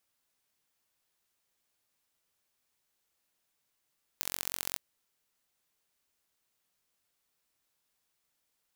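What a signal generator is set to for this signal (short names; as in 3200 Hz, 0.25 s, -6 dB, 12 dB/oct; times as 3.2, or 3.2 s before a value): pulse train 45.2/s, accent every 3, -4.5 dBFS 0.56 s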